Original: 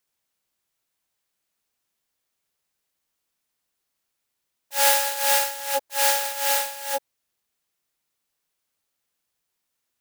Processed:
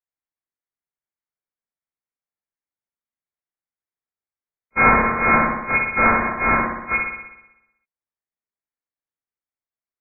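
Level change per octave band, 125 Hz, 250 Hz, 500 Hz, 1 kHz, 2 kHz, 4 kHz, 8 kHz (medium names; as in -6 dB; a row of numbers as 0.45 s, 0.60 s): no reading, +27.5 dB, +3.5 dB, +7.0 dB, +10.5 dB, under -40 dB, under -40 dB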